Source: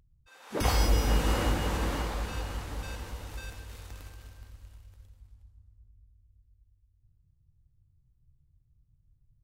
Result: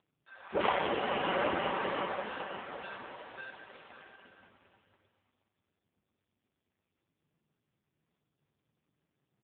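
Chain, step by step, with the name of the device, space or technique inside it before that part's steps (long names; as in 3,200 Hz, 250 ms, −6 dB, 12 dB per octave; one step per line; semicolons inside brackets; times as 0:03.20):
comb filter 5.2 ms, depth 36%
0:04.24–0:04.96: low-shelf EQ 170 Hz +8 dB
satellite phone (band-pass filter 340–3,100 Hz; single-tap delay 518 ms −18.5 dB; level +6 dB; AMR narrowband 5.15 kbit/s 8,000 Hz)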